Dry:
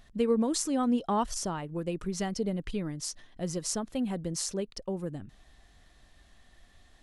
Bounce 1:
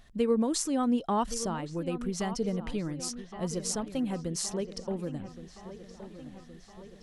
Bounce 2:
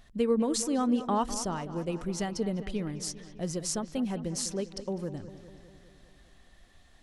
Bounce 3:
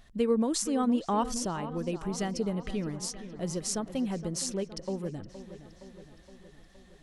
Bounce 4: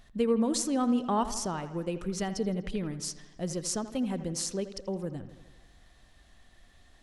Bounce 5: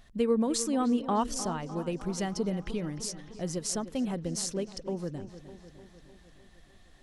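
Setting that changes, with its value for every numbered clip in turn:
delay with a low-pass on its return, delay time: 1,119, 201, 467, 82, 303 milliseconds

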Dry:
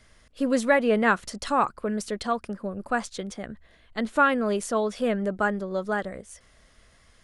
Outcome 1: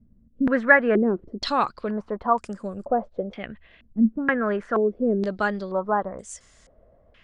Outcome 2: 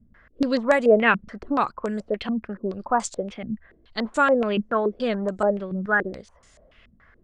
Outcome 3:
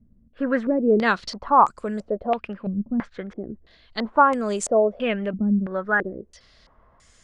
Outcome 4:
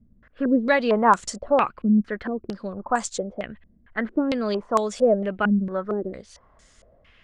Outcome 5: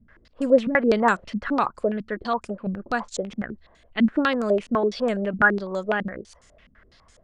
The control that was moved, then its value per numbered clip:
low-pass on a step sequencer, speed: 2.1, 7, 3, 4.4, 12 Hertz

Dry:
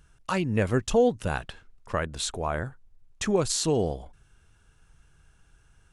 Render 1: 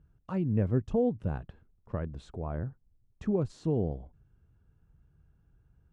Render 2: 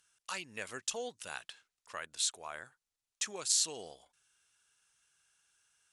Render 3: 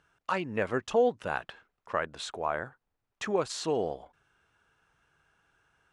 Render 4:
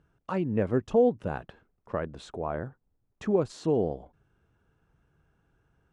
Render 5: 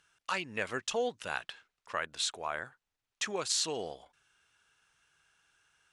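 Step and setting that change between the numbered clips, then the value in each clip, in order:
resonant band-pass, frequency: 120, 7,800, 1,100, 340, 3,100 Hertz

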